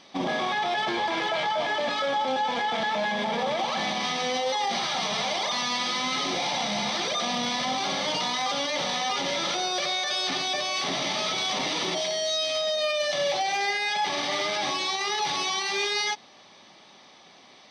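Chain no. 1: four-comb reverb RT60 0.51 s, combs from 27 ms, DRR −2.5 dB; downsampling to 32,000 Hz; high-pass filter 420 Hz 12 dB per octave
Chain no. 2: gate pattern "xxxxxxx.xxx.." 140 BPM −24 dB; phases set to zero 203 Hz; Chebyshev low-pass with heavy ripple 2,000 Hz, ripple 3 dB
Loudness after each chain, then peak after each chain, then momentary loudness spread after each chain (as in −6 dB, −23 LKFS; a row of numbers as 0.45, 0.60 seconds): −21.5, −34.0 LKFS; −9.0, −19.0 dBFS; 3, 7 LU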